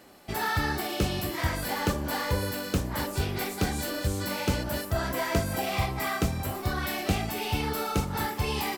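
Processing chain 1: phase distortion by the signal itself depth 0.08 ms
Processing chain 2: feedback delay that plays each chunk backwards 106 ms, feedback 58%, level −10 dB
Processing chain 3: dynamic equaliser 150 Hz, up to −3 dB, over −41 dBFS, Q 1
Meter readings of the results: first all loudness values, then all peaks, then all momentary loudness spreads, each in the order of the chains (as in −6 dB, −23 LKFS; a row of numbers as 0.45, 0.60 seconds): −30.0, −29.0, −30.0 LKFS; −12.0, −12.0, −13.0 dBFS; 3, 2, 3 LU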